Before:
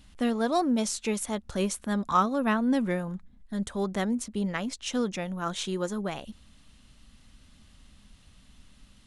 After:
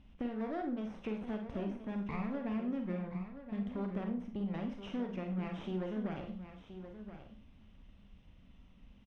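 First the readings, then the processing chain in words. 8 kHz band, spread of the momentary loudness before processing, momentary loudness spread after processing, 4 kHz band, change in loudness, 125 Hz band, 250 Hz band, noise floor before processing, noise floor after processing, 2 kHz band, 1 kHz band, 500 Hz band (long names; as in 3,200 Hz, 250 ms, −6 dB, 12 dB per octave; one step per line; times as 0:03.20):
below −35 dB, 10 LU, 12 LU, −18.5 dB, −10.5 dB, −5.5 dB, −8.0 dB, −57 dBFS, −60 dBFS, −14.0 dB, −16.0 dB, −10.5 dB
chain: lower of the sound and its delayed copy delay 0.33 ms
de-essing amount 95%
low-pass filter 2,000 Hz 12 dB per octave
downward compressor, threshold −33 dBFS, peak gain reduction 11 dB
on a send: single-tap delay 1,025 ms −11 dB
on the sum: four-comb reverb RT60 0.36 s, combs from 33 ms, DRR 4 dB
level −3.5 dB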